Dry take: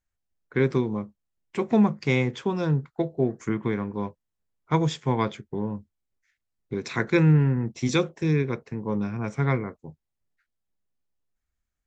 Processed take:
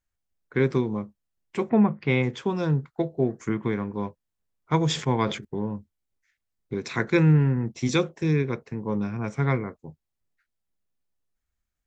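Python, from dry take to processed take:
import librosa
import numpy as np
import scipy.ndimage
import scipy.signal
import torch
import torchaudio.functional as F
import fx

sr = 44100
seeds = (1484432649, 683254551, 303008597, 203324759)

y = fx.lowpass(x, sr, hz=fx.line((1.68, 2200.0), (2.22, 4300.0)), slope=24, at=(1.68, 2.22), fade=0.02)
y = fx.sustainer(y, sr, db_per_s=100.0, at=(4.85, 5.45))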